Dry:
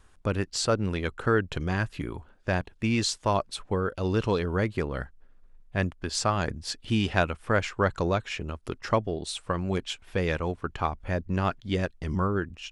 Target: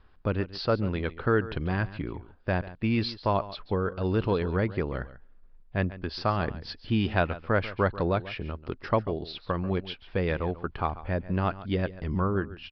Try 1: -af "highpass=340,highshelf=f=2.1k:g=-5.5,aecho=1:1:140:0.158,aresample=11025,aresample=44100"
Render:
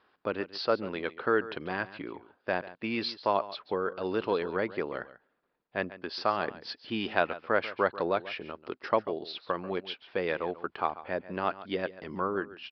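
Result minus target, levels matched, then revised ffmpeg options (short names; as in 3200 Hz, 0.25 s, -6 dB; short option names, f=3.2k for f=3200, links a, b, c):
250 Hz band -3.5 dB
-af "highshelf=f=2.1k:g=-5.5,aecho=1:1:140:0.158,aresample=11025,aresample=44100"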